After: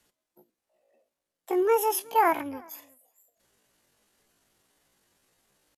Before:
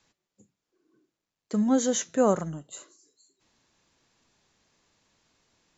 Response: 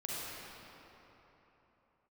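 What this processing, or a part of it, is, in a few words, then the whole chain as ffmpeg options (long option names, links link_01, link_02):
chipmunk voice: -filter_complex "[0:a]asettb=1/sr,asplit=3[link_01][link_02][link_03];[link_01]atrim=end=2.094[link_04];[link_02]atrim=start=2.09:end=2.68,asetpts=PTS-STARTPTS,afade=type=in:duration=0.004:curve=qsin,afade=type=out:start_time=0.586:duration=0.004:curve=qsin,aecho=1:1:2.2:0.37,atrim=end_sample=26019[link_05];[link_03]atrim=start=2.676[link_06];[link_04][link_05]acrossfade=duration=0.004:curve1=hsin:curve2=qsin[link_07];[link_07][link_06]acrossfade=duration=0.004:curve1=qsin:curve2=hsin,asetrate=76340,aresample=44100,atempo=0.577676,asplit=2[link_08][link_09];[link_09]adelay=367.3,volume=-26dB,highshelf=frequency=4000:gain=-8.27[link_10];[link_08][link_10]amix=inputs=2:normalize=0"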